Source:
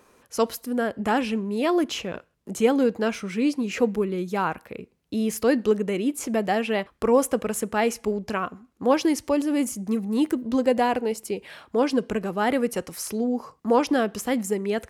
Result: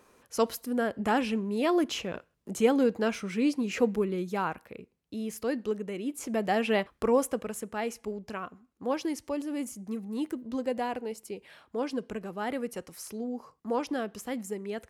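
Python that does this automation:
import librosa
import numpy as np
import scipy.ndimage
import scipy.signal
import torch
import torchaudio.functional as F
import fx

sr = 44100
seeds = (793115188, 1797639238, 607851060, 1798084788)

y = fx.gain(x, sr, db=fx.line((4.11, -3.5), (5.16, -10.0), (5.97, -10.0), (6.74, -1.0), (7.6, -10.0)))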